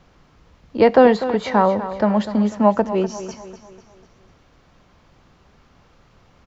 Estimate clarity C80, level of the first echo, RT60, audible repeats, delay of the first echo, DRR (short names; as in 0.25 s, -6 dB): none, -12.5 dB, none, 4, 0.247 s, none